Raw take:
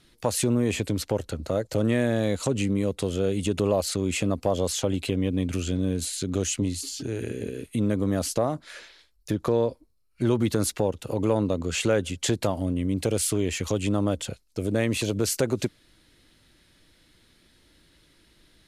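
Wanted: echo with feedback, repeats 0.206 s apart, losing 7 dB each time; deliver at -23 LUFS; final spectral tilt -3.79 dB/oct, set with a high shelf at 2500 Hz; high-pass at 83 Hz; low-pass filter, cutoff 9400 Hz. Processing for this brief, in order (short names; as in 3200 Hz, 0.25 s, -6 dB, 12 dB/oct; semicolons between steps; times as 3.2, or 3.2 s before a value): HPF 83 Hz; LPF 9400 Hz; high shelf 2500 Hz +8.5 dB; feedback echo 0.206 s, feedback 45%, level -7 dB; gain +1 dB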